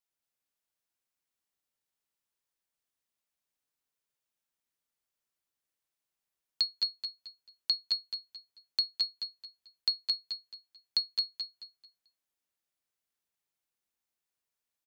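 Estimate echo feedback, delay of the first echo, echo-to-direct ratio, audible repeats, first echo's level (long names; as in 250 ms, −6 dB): 30%, 220 ms, −2.5 dB, 4, −3.0 dB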